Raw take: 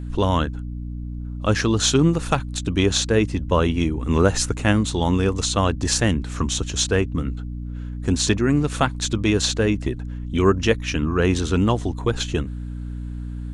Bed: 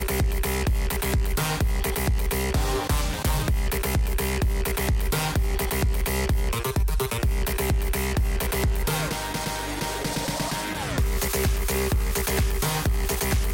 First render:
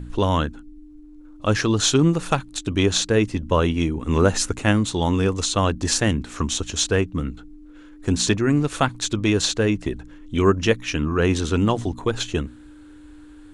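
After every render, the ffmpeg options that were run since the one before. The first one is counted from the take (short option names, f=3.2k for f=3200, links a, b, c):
-af "bandreject=f=60:t=h:w=4,bandreject=f=120:t=h:w=4,bandreject=f=180:t=h:w=4,bandreject=f=240:t=h:w=4"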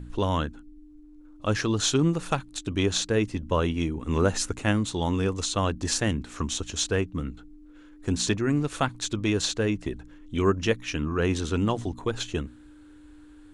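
-af "volume=-5.5dB"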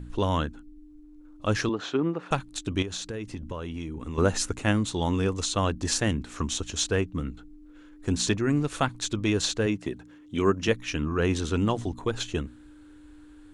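-filter_complex "[0:a]asettb=1/sr,asplit=3[a][b][c];[a]atrim=end=1.694[d];[b]atrim=start=1.69:end=2.31,asetpts=PTS-STARTPTS,afade=t=in:d=0.004:c=qsin,afade=t=out:st=0.616:d=0.004:c=qsin,highpass=260,lowpass=2k[e];[c]atrim=start=2.306[f];[d][e]acrossfade=d=0.004:c1=hsin:c2=qsin[g];[g][f]acrossfade=d=0.004:c1=qsin:c2=hsin,asettb=1/sr,asplit=3[h][i][j];[h]atrim=end=2.824[k];[i]atrim=start=2.82:end=4.18,asetpts=PTS-STARTPTS,afade=t=in:d=0.004:c=qsin,afade=t=out:st=1.356:d=0.004:c=qsin,acompressor=threshold=-31dB:ratio=6:attack=3.2:release=140:knee=1:detection=peak[l];[j]atrim=start=4.176[m];[k][l]acrossfade=d=0.004:c1=hsin:c2=qsin[n];[n][m]acrossfade=d=0.004:c1=qsin:c2=hsin,asettb=1/sr,asplit=3[o][p][q];[o]atrim=end=9.664[r];[p]atrim=start=9.66:end=10.68,asetpts=PTS-STARTPTS,afade=t=in:d=0.004:c=qsin,afade=t=out:st=1.016:d=0.004:c=qsin,highpass=110[s];[q]atrim=start=10.676[t];[r][s]acrossfade=d=0.004:c1=hsin:c2=qsin[u];[u][t]acrossfade=d=0.004:c1=qsin:c2=hsin"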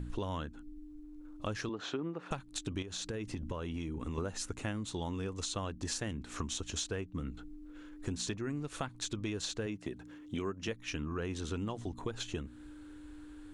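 -af "acompressor=threshold=-35dB:ratio=6"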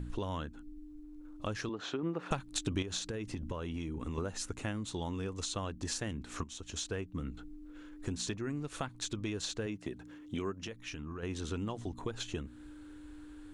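-filter_complex "[0:a]asettb=1/sr,asplit=3[a][b][c];[a]atrim=end=10.644[d];[b]atrim=start=10.64:end=11.23,asetpts=PTS-STARTPTS,afade=t=in:d=0.004:c=qsin,afade=t=out:st=0.586:d=0.004:c=qsin,acompressor=threshold=-38dB:ratio=6:attack=3.2:release=140:knee=1:detection=peak[e];[c]atrim=start=11.226[f];[d][e]acrossfade=d=0.004:c1=hsin:c2=qsin[g];[g][f]acrossfade=d=0.004:c1=qsin:c2=hsin,asplit=4[h][i][j][k];[h]atrim=end=2.032[l];[i]atrim=start=2.028:end=2.992,asetpts=PTS-STARTPTS,volume=4dB[m];[j]atrim=start=2.988:end=6.44,asetpts=PTS-STARTPTS,afade=t=out:st=3.448:d=0.004:c=hsin:silence=0.237137[n];[k]atrim=start=6.44,asetpts=PTS-STARTPTS,afade=t=in:d=0.49:silence=0.237137[o];[l][m]acrossfade=d=0.004:c1=hsin:c2=hsin[p];[n][o]concat=n=2:v=0:a=1[q];[p][q]acrossfade=d=0.004:c1=hsin:c2=hsin"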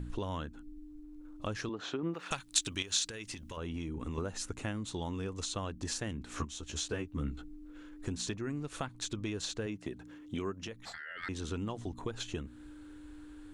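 -filter_complex "[0:a]asettb=1/sr,asplit=3[a][b][c];[a]atrim=end=2.144[d];[b]atrim=start=2.14:end=3.57,asetpts=PTS-STARTPTS,afade=t=in:d=0.004:c=qsin,afade=t=out:st=1.426:d=0.004:c=qsin,tiltshelf=f=1.3k:g=-8.5[e];[c]atrim=start=3.566[f];[d][e]acrossfade=d=0.004:c1=hsin:c2=qsin[g];[g][f]acrossfade=d=0.004:c1=qsin:c2=hsin,asettb=1/sr,asplit=3[h][i][j];[h]atrim=end=6.364[k];[i]atrim=start=6.36:end=7.42,asetpts=PTS-STARTPTS,afade=t=in:d=0.004:c=qsin,afade=t=out:st=1.056:d=0.004:c=qsin,asplit=2[l][m];[m]adelay=14,volume=-2.5dB[n];[l][n]amix=inputs=2:normalize=0,atrim=end_sample=46746[o];[j]atrim=start=7.416[p];[k][o]acrossfade=d=0.004:c1=hsin:c2=qsin[q];[q][p]acrossfade=d=0.004:c1=qsin:c2=hsin,asettb=1/sr,asplit=3[r][s][t];[r]atrim=end=10.854[u];[s]atrim=start=10.85:end=11.29,asetpts=PTS-STARTPTS,afade=t=in:d=0.004:c=qsin,afade=t=out:st=0.436:d=0.004:c=qsin,aeval=exprs='val(0)*sin(2*PI*1700*n/s)':c=same[v];[t]atrim=start=11.286[w];[u][v]acrossfade=d=0.004:c1=hsin:c2=qsin[x];[x][w]acrossfade=d=0.004:c1=qsin:c2=hsin"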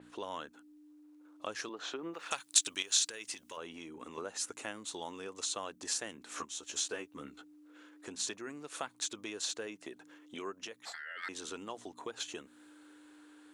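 -af "highpass=440,adynamicequalizer=threshold=0.00251:dfrequency=5700:dqfactor=0.7:tfrequency=5700:tqfactor=0.7:attack=5:release=100:ratio=0.375:range=3:mode=boostabove:tftype=highshelf"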